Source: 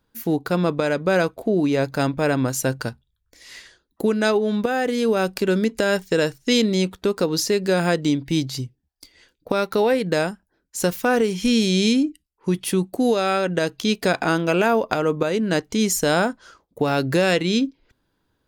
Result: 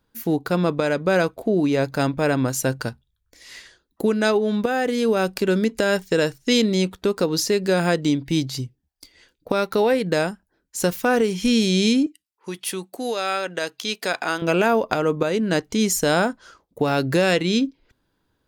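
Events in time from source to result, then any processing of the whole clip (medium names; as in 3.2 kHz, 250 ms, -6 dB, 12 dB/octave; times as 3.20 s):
12.06–14.42 s: high-pass 860 Hz 6 dB/octave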